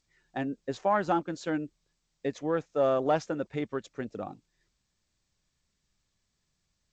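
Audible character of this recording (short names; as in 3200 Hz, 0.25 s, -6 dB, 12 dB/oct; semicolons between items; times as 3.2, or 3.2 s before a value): G.722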